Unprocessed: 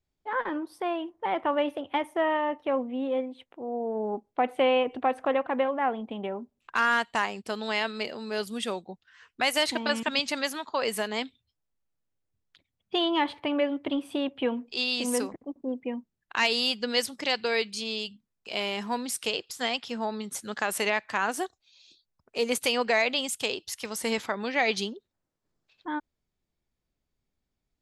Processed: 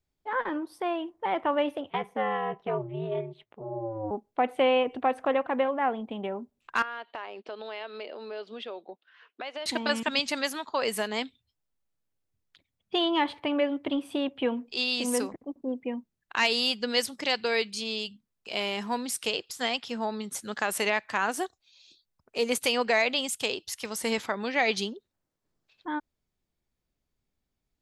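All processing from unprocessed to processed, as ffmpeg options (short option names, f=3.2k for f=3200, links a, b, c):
-filter_complex "[0:a]asettb=1/sr,asplit=3[a][b][c];[a]atrim=end=1.904[d];[b]atrim=start=1.9:end=4.11,asetpts=PTS-STARTPTS,afade=t=in:d=0.004:c=qsin,afade=t=out:st=2.206:d=0.004:c=qsin,equalizer=f=9.8k:t=o:w=0.99:g=-11,aeval=exprs='val(0)*sin(2*PI*110*n/s)':c=same[e];[c]atrim=start=4.106[f];[d][e]acrossfade=d=0.004:c1=hsin:c2=qsin[g];[g][f]acrossfade=d=0.004:c1=qsin:c2=hsin,asettb=1/sr,asplit=3[h][i][j];[h]atrim=end=6.824[k];[i]atrim=start=6.82:end=9.66,asetpts=PTS-STARTPTS,afade=t=in:d=0.004:c=qsin,afade=t=out:st=2.836:d=0.004:c=qsin,highpass=f=290:w=0.5412,highpass=f=290:w=1.3066,equalizer=f=410:t=q:w=4:g=3,equalizer=f=610:t=q:w=4:g=5,equalizer=f=1.9k:t=q:w=4:g=-4,lowpass=f=3.8k:w=0.5412,lowpass=f=3.8k:w=1.3066,acompressor=threshold=-37dB:ratio=3:attack=3.2:release=140:knee=1:detection=peak[l];[j]atrim=start=9.656[m];[k][l]acrossfade=d=0.004:c1=hsin:c2=qsin[n];[n][m]acrossfade=d=0.004:c1=qsin:c2=hsin"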